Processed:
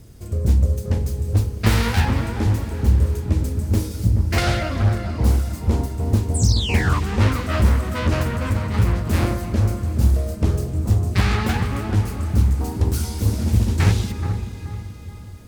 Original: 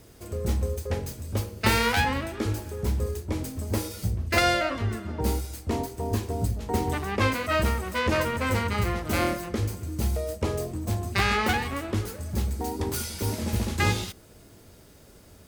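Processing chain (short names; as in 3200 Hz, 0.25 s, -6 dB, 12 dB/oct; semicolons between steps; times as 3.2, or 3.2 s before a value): tone controls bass +13 dB, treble +4 dB; 6.34–7 painted sound fall 970–9200 Hz -25 dBFS; 8.32–8.74 compressor, threshold -18 dBFS, peak gain reduction 7.5 dB; analogue delay 0.429 s, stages 4096, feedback 36%, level -7.5 dB; on a send at -11.5 dB: reverb RT60 5.0 s, pre-delay 0.125 s; on the sum: Doppler distortion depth 0.67 ms; gain -2 dB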